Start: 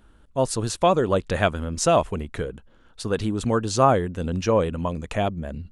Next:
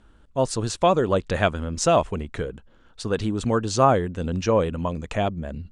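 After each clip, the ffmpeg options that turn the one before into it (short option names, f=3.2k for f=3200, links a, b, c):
-af "lowpass=f=8.7k:w=0.5412,lowpass=f=8.7k:w=1.3066"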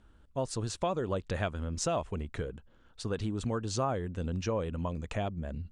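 -af "equalizer=f=84:w=0.95:g=4,acompressor=threshold=-23dB:ratio=2.5,volume=-7dB"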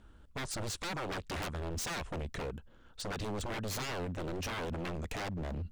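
-af "aeval=exprs='0.0178*(abs(mod(val(0)/0.0178+3,4)-2)-1)':c=same,volume=2.5dB"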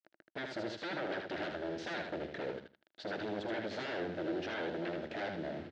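-filter_complex "[0:a]acrusher=bits=7:mix=0:aa=0.000001,highpass=210,equalizer=f=330:t=q:w=4:g=8,equalizer=f=620:t=q:w=4:g=7,equalizer=f=1.1k:t=q:w=4:g=-10,equalizer=f=1.6k:t=q:w=4:g=6,equalizer=f=2.5k:t=q:w=4:g=-4,lowpass=f=4k:w=0.5412,lowpass=f=4k:w=1.3066,asplit=2[a][b];[b]aecho=0:1:78|156|234:0.562|0.101|0.0182[c];[a][c]amix=inputs=2:normalize=0,volume=-2.5dB"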